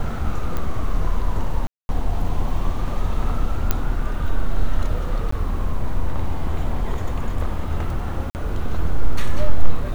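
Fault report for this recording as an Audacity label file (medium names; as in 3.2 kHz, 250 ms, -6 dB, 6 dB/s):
0.570000	0.570000	pop -13 dBFS
1.670000	1.890000	dropout 221 ms
3.710000	3.710000	pop -4 dBFS
5.310000	5.320000	dropout 14 ms
8.300000	8.350000	dropout 49 ms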